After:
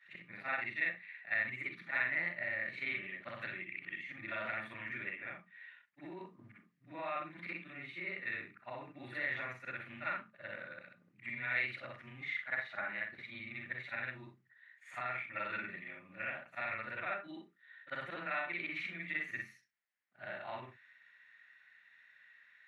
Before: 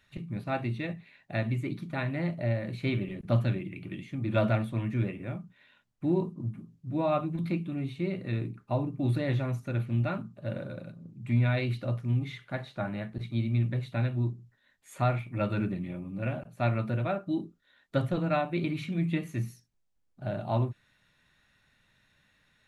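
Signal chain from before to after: short-time spectra conjugated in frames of 128 ms; peak limiter -26 dBFS, peak gain reduction 9 dB; band-pass filter 1.9 kHz, Q 4.4; trim +14 dB

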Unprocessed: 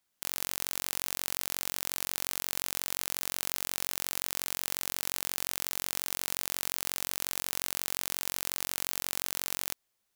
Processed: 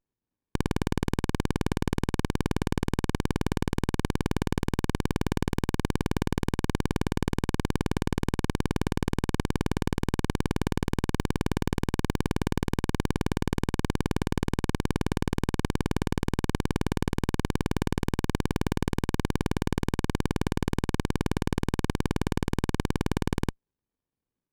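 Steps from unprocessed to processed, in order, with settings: wide varispeed 0.414×; peaking EQ 940 Hz -13 dB 0.89 oct; sliding maximum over 65 samples; trim -5 dB

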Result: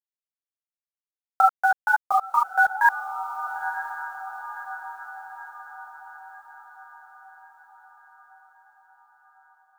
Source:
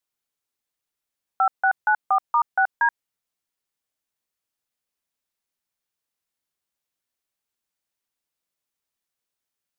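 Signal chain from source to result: bit crusher 7-bit; echo that smears into a reverb 1011 ms, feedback 55%, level -13 dB; 1.41–2.86 s: three-phase chorus; trim +4 dB

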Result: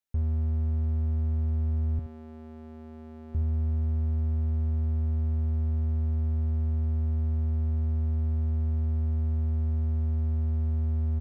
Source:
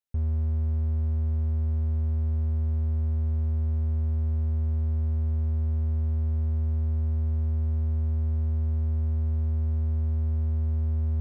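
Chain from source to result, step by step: 1.99–3.35 s: high-pass 280 Hz 12 dB/octave; delay 72 ms -12 dB

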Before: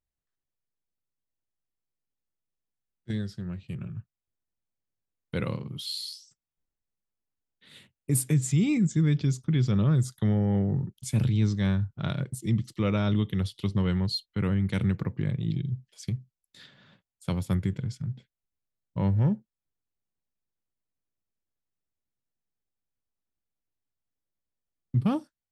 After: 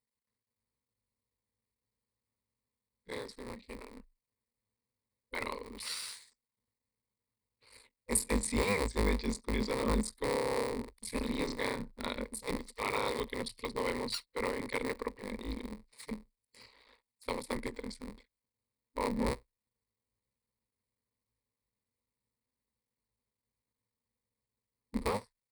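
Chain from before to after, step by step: cycle switcher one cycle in 3, muted; spectral gate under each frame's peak -10 dB weak; rippled EQ curve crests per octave 0.94, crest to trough 12 dB

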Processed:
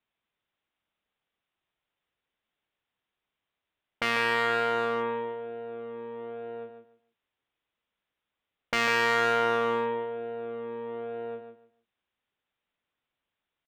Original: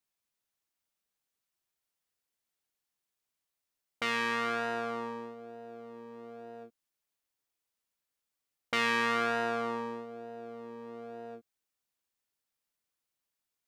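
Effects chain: resampled via 8 kHz; feedback delay 148 ms, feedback 21%, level -8.5 dB; one-sided clip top -30 dBFS, bottom -18.5 dBFS; trim +6.5 dB

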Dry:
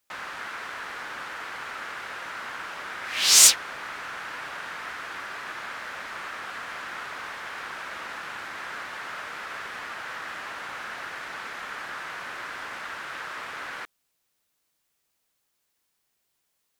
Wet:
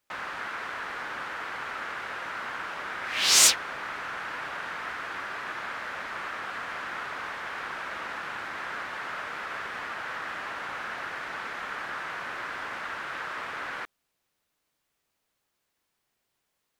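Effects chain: treble shelf 4 kHz -8.5 dB; trim +2 dB

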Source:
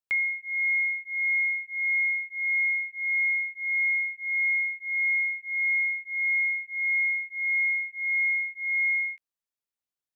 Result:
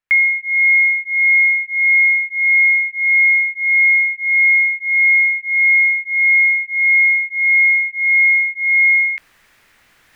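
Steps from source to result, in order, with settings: tilt EQ -2 dB/octave; reverse; upward compressor, threshold -34 dBFS; reverse; peaking EQ 1.9 kHz +14.5 dB 1.4 oct; trim +2 dB

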